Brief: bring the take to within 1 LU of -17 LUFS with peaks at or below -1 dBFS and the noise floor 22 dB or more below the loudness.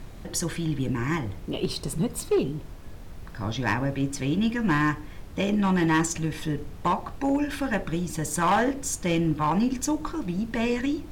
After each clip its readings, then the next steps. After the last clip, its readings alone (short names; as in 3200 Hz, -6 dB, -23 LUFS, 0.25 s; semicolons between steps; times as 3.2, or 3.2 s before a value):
clipped 0.8%; flat tops at -17.0 dBFS; noise floor -41 dBFS; noise floor target -49 dBFS; loudness -27.0 LUFS; peak -17.0 dBFS; loudness target -17.0 LUFS
-> clip repair -17 dBFS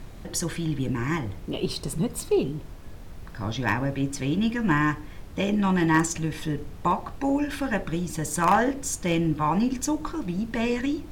clipped 0.0%; noise floor -41 dBFS; noise floor target -49 dBFS
-> noise print and reduce 8 dB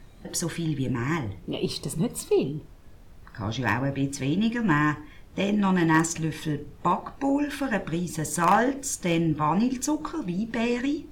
noise floor -48 dBFS; noise floor target -49 dBFS
-> noise print and reduce 6 dB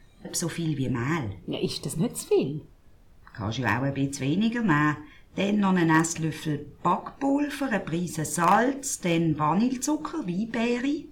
noise floor -53 dBFS; loudness -26.5 LUFS; peak -7.5 dBFS; loudness target -17.0 LUFS
-> gain +9.5 dB; limiter -1 dBFS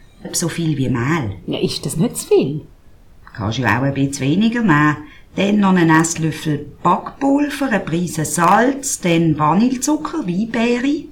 loudness -17.0 LUFS; peak -1.0 dBFS; noise floor -44 dBFS